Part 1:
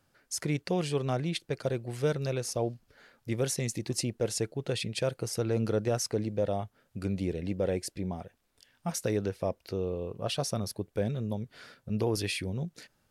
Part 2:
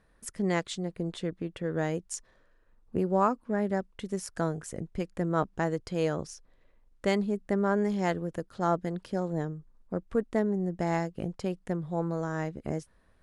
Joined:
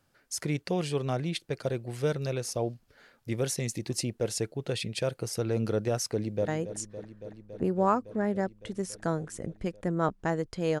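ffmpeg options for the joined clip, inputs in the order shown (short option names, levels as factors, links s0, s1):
-filter_complex "[0:a]apad=whole_dur=10.8,atrim=end=10.8,atrim=end=6.482[s0];[1:a]atrim=start=1.818:end=6.14[s1];[s0][s1]acrossfade=d=0.004:c1=hsin:c2=hsin,asplit=2[s2][s3];[s3]afade=t=in:st=6.12:d=0.01,afade=t=out:st=6.48:d=0.01,aecho=0:1:280|560|840|1120|1400|1680|1960|2240|2520|2800|3080|3360:0.251189|0.21351|0.181484|0.154261|0.131122|0.111454|0.0947357|0.0805253|0.0684465|0.0581795|0.0494526|0.0420347[s4];[s2][s4]amix=inputs=2:normalize=0"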